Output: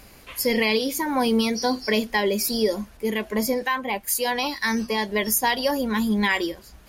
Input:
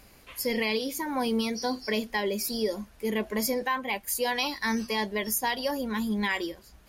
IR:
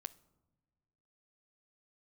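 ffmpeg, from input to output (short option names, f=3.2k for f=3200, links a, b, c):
-filter_complex "[0:a]asettb=1/sr,asplit=3[a][b][c];[a]atrim=end=2.974[d];[b]atrim=start=2.97:end=5.09,asetpts=PTS-STARTPTS,afade=t=in:d=0.004:c=qsin,afade=t=out:st=2.116:d=0.004:c=qsin,acrossover=split=1200[e][f];[e]aeval=exprs='val(0)*(1-0.5/2+0.5/2*cos(2*PI*2.1*n/s))':c=same[g];[f]aeval=exprs='val(0)*(1-0.5/2-0.5/2*cos(2*PI*2.1*n/s))':c=same[h];[g][h]amix=inputs=2:normalize=0[i];[c]atrim=start=5.086[j];[d][i]acrossfade=d=0.004:c1=hsin:c2=qsin[k];[k][j]acrossfade=d=0.004:c1=qsin:c2=hsin,volume=6.5dB"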